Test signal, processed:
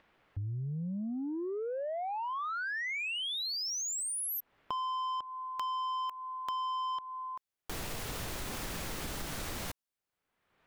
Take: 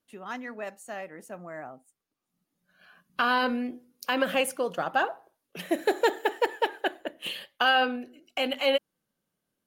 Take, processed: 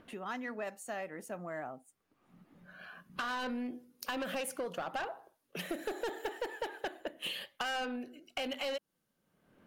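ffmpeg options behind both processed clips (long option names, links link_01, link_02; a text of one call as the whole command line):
ffmpeg -i in.wav -filter_complex "[0:a]acrossover=split=2600[link_01][link_02];[link_01]acompressor=mode=upward:threshold=-43dB:ratio=2.5[link_03];[link_03][link_02]amix=inputs=2:normalize=0,asoftclip=type=tanh:threshold=-24.5dB,acompressor=threshold=-35dB:ratio=6" out.wav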